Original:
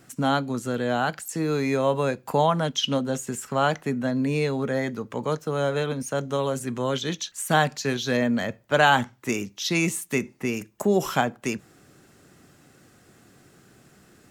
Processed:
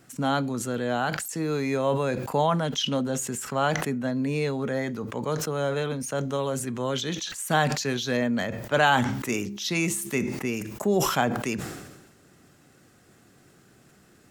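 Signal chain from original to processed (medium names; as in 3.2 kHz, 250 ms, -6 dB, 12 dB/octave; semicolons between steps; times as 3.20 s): 8.96–10.15 s: de-hum 67.86 Hz, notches 6; decay stretcher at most 48 dB/s; trim -2.5 dB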